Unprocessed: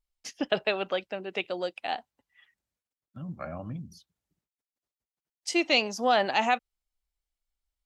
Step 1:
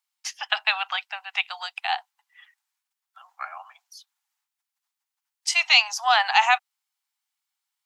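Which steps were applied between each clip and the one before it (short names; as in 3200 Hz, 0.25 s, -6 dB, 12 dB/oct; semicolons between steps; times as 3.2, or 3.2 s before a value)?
steep high-pass 770 Hz 72 dB/oct; gain +8.5 dB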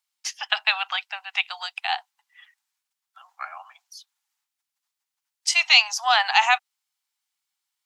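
bell 5400 Hz +3.5 dB 2.6 oct; gain -1 dB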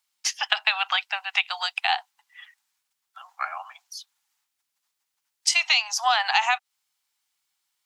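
compressor 6:1, threshold -23 dBFS, peak gain reduction 12.5 dB; gain +5 dB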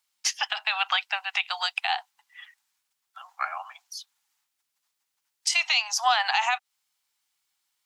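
limiter -11.5 dBFS, peak gain reduction 9.5 dB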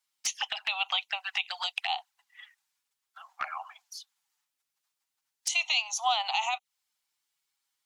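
envelope flanger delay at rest 7.4 ms, full sweep at -24.5 dBFS; gain -1.5 dB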